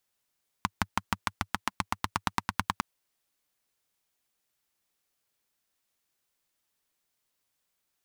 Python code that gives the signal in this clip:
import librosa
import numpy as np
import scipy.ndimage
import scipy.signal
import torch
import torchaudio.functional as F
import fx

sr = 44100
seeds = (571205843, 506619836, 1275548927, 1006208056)

y = fx.engine_single_rev(sr, seeds[0], length_s=2.16, rpm=700, resonances_hz=(100.0, 190.0, 1000.0), end_rpm=1200)